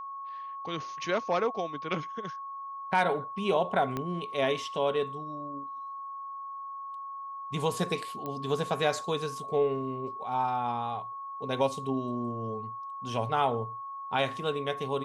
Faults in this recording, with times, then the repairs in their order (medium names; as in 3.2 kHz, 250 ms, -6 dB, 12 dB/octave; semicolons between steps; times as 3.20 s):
whine 1.1 kHz -37 dBFS
3.97 s: pop -19 dBFS
8.26 s: pop -23 dBFS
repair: de-click; band-stop 1.1 kHz, Q 30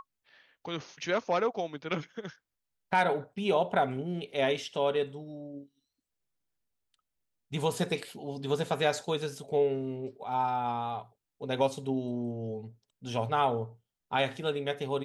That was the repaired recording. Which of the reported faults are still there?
3.97 s: pop